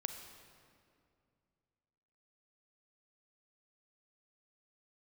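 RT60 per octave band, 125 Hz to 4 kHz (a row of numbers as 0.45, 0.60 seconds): 3.0, 2.8, 2.5, 2.2, 1.9, 1.6 seconds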